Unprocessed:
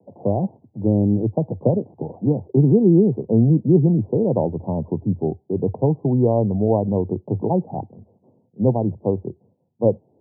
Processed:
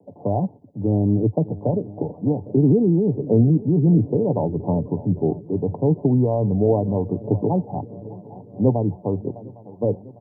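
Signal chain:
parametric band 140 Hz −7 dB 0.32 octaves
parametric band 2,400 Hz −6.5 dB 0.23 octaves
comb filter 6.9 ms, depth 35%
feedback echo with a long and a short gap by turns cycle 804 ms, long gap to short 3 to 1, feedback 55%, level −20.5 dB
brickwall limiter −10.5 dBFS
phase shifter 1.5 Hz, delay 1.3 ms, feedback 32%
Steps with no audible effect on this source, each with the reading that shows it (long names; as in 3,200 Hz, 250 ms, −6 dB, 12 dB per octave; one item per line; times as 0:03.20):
parametric band 2,400 Hz: nothing at its input above 960 Hz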